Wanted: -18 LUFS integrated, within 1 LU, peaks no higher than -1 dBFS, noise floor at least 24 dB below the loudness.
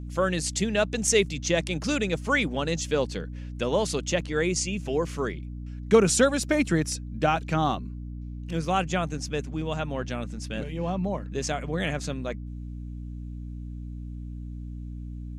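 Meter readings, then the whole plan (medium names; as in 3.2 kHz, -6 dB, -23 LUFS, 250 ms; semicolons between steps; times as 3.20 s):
hum 60 Hz; highest harmonic 300 Hz; hum level -34 dBFS; loudness -27.0 LUFS; peak level -8.0 dBFS; loudness target -18.0 LUFS
-> de-hum 60 Hz, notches 5; trim +9 dB; peak limiter -1 dBFS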